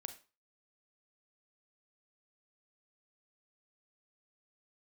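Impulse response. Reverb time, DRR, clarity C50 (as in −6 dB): 0.35 s, 8.0 dB, 11.5 dB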